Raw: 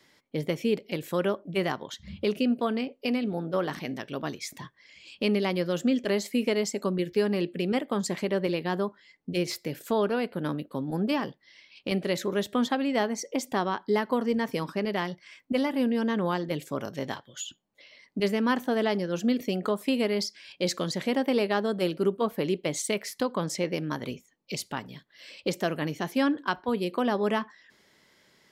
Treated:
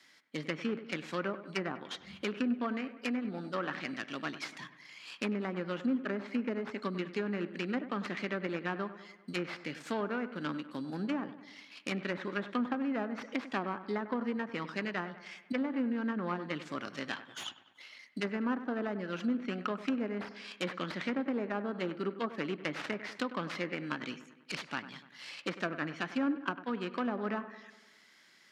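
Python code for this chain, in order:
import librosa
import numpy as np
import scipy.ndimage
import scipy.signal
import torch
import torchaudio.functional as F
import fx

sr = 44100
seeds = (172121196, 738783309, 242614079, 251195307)

p1 = fx.tracing_dist(x, sr, depth_ms=0.31)
p2 = fx.band_shelf(p1, sr, hz=630.0, db=-10.0, octaves=1.7)
p3 = fx.sample_hold(p2, sr, seeds[0], rate_hz=4300.0, jitter_pct=0)
p4 = p2 + F.gain(torch.from_numpy(p3), -9.5).numpy()
p5 = fx.weighting(p4, sr, curve='A')
p6 = fx.env_lowpass_down(p5, sr, base_hz=860.0, full_db=-27.5)
y = p6 + fx.echo_wet_lowpass(p6, sr, ms=98, feedback_pct=56, hz=2400.0, wet_db=-13.5, dry=0)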